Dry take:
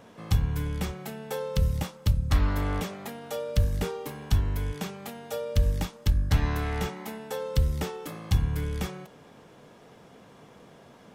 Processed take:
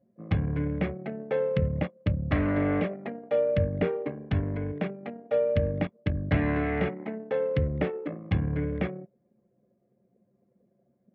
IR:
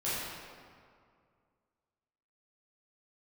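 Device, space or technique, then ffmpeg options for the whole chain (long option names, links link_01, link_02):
bass cabinet: -af "anlmdn=2.51,highpass=frequency=89:width=0.5412,highpass=frequency=89:width=1.3066,equalizer=frequency=110:width_type=q:width=4:gain=-6,equalizer=frequency=300:width_type=q:width=4:gain=5,equalizer=frequency=600:width_type=q:width=4:gain=8,equalizer=frequency=900:width_type=q:width=4:gain=-10,equalizer=frequency=1300:width_type=q:width=4:gain=-5,equalizer=frequency=2100:width_type=q:width=4:gain=4,lowpass=frequency=2400:width=0.5412,lowpass=frequency=2400:width=1.3066,volume=4dB"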